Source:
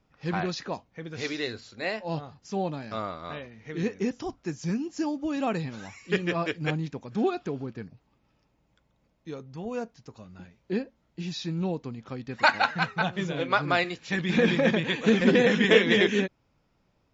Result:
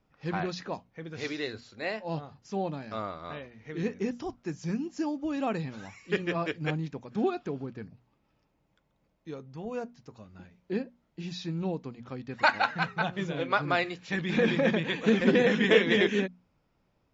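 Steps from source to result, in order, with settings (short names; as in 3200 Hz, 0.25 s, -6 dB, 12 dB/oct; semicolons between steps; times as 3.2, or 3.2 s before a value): high shelf 4200 Hz -5 dB; notches 60/120/180/240 Hz; gain -2 dB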